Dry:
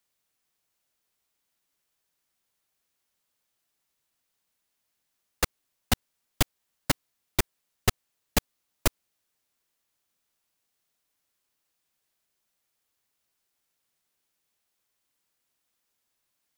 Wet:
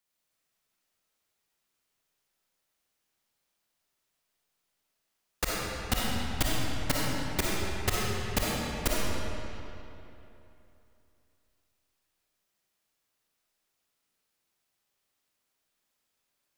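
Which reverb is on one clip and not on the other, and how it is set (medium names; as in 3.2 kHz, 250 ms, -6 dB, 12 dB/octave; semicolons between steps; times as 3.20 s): algorithmic reverb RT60 3 s, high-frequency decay 0.75×, pre-delay 15 ms, DRR -5.5 dB; trim -5.5 dB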